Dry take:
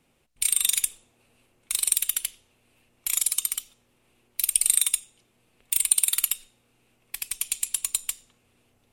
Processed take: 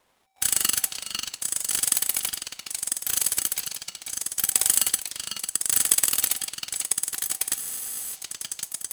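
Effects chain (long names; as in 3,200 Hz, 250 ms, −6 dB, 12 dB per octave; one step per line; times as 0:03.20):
echo through a band-pass that steps 499 ms, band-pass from 4,400 Hz, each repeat 0.7 octaves, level −0.5 dB
frozen spectrum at 0:07.60, 0.54 s
ring modulator with a square carrier 770 Hz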